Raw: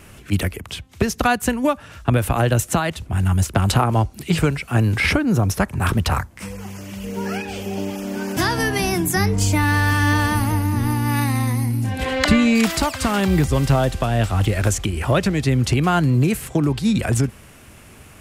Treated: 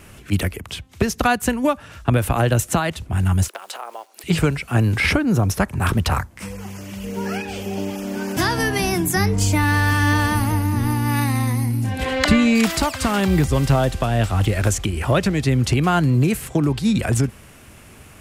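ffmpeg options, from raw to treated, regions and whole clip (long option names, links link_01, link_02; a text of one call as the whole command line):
ffmpeg -i in.wav -filter_complex "[0:a]asettb=1/sr,asplit=3[link_01][link_02][link_03];[link_01]atrim=end=3.484[link_04];[link_02]atrim=start=3.48:end=4.24,asetpts=PTS-STARTPTS,afade=type=in:duration=0.004:curve=qsin,afade=type=out:start_time=0.756:duration=0.004:curve=qsin,acompressor=threshold=-25dB:ratio=8:attack=3.2:release=140:knee=1:detection=peak,acrusher=bits=7:mode=log:mix=0:aa=0.000001,highpass=frequency=480:width=0.5412,highpass=frequency=480:width=1.3066[link_05];[link_03]atrim=start=4.236[link_06];[link_04][link_05]acrossfade=duration=0.004:curve1=hsin:curve2=qsin[link_07];[link_07][link_06]acrossfade=duration=0.004:curve1=qsin:curve2=hsin" out.wav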